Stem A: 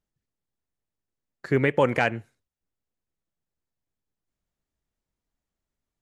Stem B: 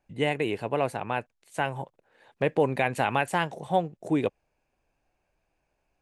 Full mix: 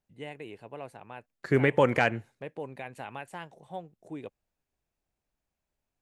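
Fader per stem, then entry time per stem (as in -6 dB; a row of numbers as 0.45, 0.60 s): -1.5, -15.0 dB; 0.00, 0.00 s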